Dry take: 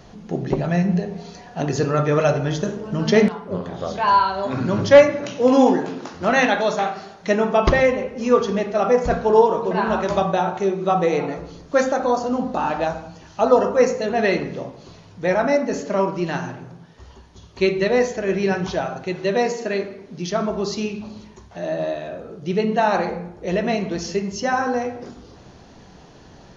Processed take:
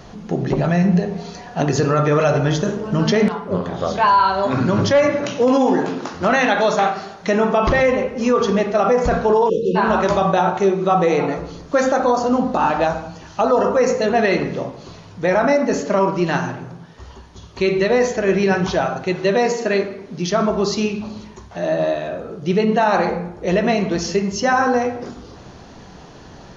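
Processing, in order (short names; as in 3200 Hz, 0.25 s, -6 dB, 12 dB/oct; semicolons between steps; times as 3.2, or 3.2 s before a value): spectral delete 9.49–9.76, 550–2500 Hz; limiter -13 dBFS, peak gain reduction 11 dB; bell 1200 Hz +2.5 dB; gain +5 dB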